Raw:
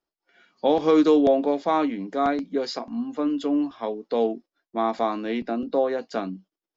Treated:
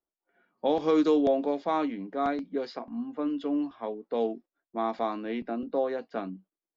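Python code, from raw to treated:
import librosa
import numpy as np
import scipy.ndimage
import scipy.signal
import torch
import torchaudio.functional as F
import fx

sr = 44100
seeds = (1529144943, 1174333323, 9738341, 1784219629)

y = fx.env_lowpass(x, sr, base_hz=1200.0, full_db=-15.5)
y = F.gain(torch.from_numpy(y), -5.5).numpy()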